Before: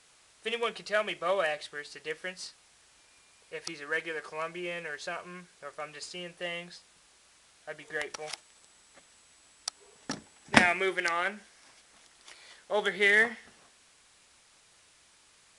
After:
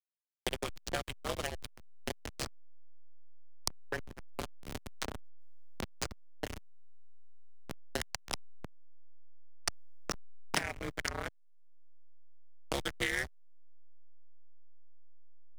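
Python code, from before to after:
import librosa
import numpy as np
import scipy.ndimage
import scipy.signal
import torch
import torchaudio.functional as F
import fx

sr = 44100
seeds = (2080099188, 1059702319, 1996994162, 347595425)

y = fx.bass_treble(x, sr, bass_db=-10, treble_db=13)
y = y * np.sin(2.0 * np.pi * 70.0 * np.arange(len(y)) / sr)
y = fx.backlash(y, sr, play_db=-21.5)
y = fx.band_squash(y, sr, depth_pct=100)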